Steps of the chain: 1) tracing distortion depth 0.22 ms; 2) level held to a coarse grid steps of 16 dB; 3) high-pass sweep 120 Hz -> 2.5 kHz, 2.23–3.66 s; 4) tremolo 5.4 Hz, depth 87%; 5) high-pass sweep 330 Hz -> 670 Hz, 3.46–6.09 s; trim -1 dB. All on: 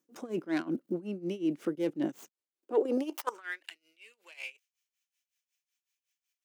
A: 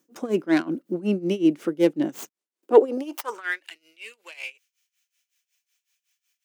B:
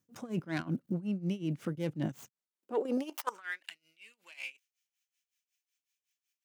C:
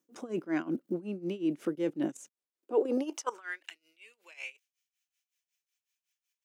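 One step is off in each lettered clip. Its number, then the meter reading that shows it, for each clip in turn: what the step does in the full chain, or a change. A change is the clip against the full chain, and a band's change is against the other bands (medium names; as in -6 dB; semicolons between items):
2, crest factor change +3.0 dB; 5, 125 Hz band +10.0 dB; 1, 8 kHz band +6.0 dB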